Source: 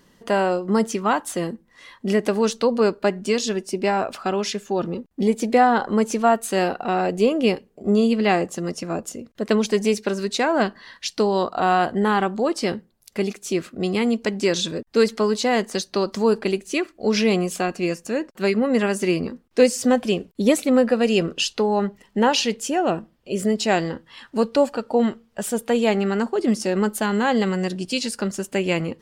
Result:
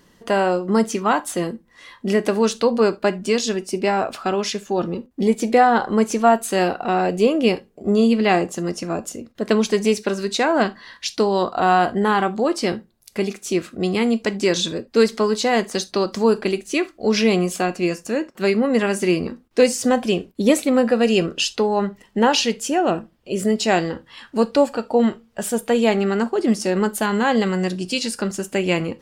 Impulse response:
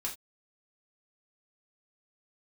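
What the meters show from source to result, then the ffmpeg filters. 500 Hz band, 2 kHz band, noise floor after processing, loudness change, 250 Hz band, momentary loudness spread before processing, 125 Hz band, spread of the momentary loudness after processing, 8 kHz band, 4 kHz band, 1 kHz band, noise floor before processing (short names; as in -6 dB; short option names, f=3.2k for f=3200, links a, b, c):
+1.5 dB, +2.0 dB, -56 dBFS, +2.0 dB, +1.5 dB, 8 LU, +1.5 dB, 8 LU, +2.0 dB, +2.0 dB, +2.0 dB, -60 dBFS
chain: -filter_complex "[0:a]asplit=2[a][b];[1:a]atrim=start_sample=2205,afade=t=out:st=0.13:d=0.01,atrim=end_sample=6174[c];[b][c]afir=irnorm=-1:irlink=0,volume=-10dB[d];[a][d]amix=inputs=2:normalize=0"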